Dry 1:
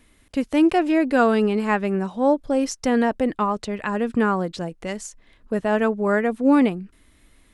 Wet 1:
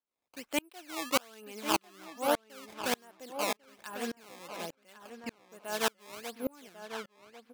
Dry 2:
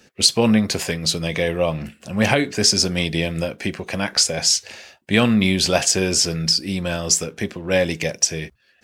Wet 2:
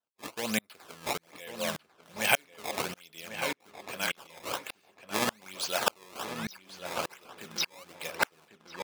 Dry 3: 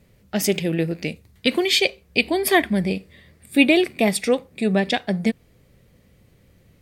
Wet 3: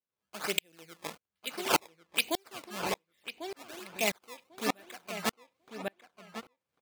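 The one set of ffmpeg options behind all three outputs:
-filter_complex "[0:a]equalizer=f=3.3k:w=1.5:g=4,acrusher=samples=17:mix=1:aa=0.000001:lfo=1:lforange=27.2:lforate=1.2,highpass=f=1.1k:p=1,bandreject=f=1.9k:w=14,asplit=2[a][b];[b]adelay=1096,lowpass=f=3k:p=1,volume=-5dB,asplit=2[c][d];[d]adelay=1096,lowpass=f=3k:p=1,volume=0.24,asplit=2[e][f];[f]adelay=1096,lowpass=f=3k:p=1,volume=0.24[g];[c][e][g]amix=inputs=3:normalize=0[h];[a][h]amix=inputs=2:normalize=0,aeval=exprs='val(0)*pow(10,-35*if(lt(mod(-1.7*n/s,1),2*abs(-1.7)/1000),1-mod(-1.7*n/s,1)/(2*abs(-1.7)/1000),(mod(-1.7*n/s,1)-2*abs(-1.7)/1000)/(1-2*abs(-1.7)/1000))/20)':c=same,volume=-1dB"

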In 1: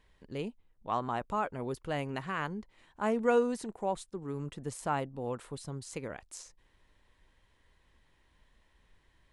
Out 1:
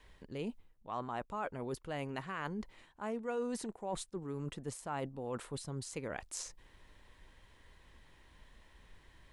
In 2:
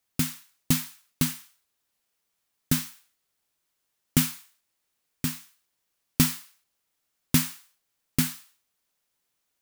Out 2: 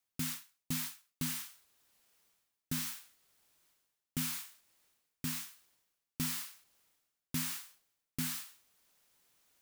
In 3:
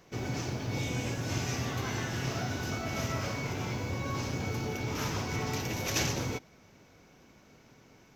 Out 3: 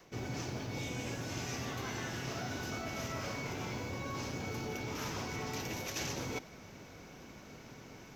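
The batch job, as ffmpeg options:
-af "adynamicequalizer=threshold=0.00447:dfrequency=100:dqfactor=0.98:tfrequency=100:tqfactor=0.98:attack=5:release=100:ratio=0.375:range=2.5:mode=cutabove:tftype=bell,areverse,acompressor=threshold=-45dB:ratio=4,areverse,volume=6.5dB"

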